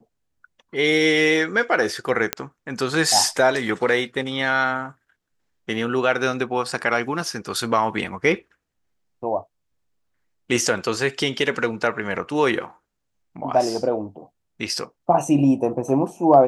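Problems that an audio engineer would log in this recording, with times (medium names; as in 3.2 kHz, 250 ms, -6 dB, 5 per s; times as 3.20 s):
2.33 s: pop -3 dBFS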